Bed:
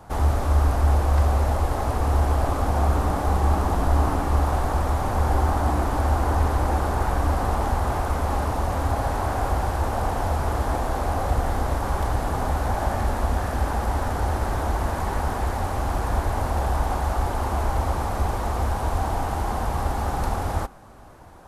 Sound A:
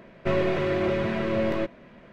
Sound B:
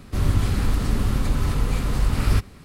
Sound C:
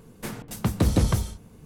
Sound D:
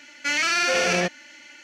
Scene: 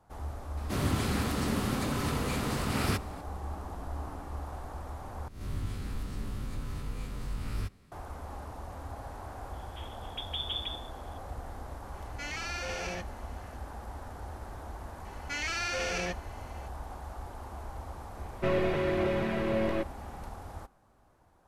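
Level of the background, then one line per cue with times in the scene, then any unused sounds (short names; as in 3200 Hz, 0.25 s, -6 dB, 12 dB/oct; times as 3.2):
bed -18 dB
0.57 add B -1.5 dB + HPF 170 Hz
5.28 replace with B -17 dB + spectral swells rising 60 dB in 0.53 s
9.53 add C -17 dB + inverted band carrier 3500 Hz
11.94 add D -16 dB
15.05 add D -11.5 dB
18.17 add A -4 dB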